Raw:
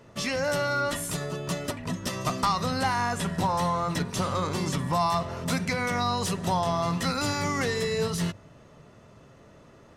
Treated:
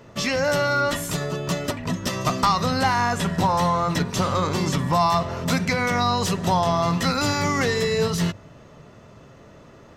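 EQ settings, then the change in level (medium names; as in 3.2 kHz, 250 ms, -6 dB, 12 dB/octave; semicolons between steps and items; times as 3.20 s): peaking EQ 9.6 kHz -9.5 dB 0.3 oct; +5.5 dB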